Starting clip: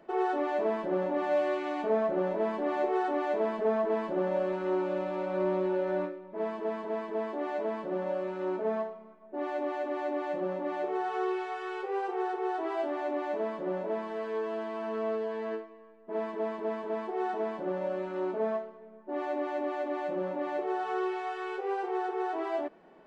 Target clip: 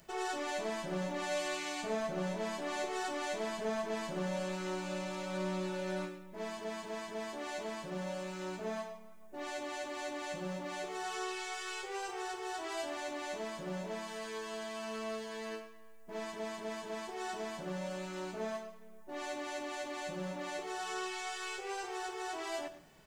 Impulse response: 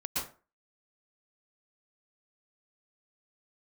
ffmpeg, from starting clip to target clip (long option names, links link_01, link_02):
-filter_complex "[0:a]firequalizer=gain_entry='entry(130,0);entry(220,-17);entry(320,-22);entry(2300,-8);entry(6500,10)':delay=0.05:min_phase=1,asplit=2[link_01][link_02];[1:a]atrim=start_sample=2205,asetrate=52920,aresample=44100[link_03];[link_02][link_03]afir=irnorm=-1:irlink=0,volume=-13.5dB[link_04];[link_01][link_04]amix=inputs=2:normalize=0,volume=10dB"